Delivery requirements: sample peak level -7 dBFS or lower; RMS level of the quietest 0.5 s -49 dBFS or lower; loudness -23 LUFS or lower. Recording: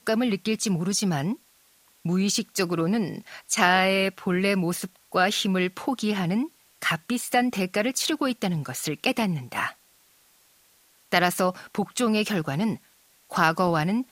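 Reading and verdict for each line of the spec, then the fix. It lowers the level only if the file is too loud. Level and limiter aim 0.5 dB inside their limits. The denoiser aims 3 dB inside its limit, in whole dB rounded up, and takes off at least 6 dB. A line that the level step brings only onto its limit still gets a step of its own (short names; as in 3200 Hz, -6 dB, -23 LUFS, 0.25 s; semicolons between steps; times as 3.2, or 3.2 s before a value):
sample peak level -3.0 dBFS: fail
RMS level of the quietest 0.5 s -60 dBFS: OK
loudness -25.0 LUFS: OK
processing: limiter -7.5 dBFS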